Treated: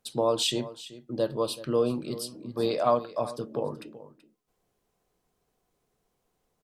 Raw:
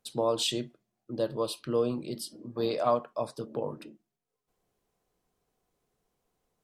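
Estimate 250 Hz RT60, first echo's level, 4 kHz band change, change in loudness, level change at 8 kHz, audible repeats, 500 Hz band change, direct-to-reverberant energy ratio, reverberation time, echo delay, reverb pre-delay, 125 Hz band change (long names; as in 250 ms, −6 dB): no reverb audible, −16.5 dB, +2.5 dB, +2.5 dB, +2.5 dB, 1, +2.5 dB, no reverb audible, no reverb audible, 380 ms, no reverb audible, +2.5 dB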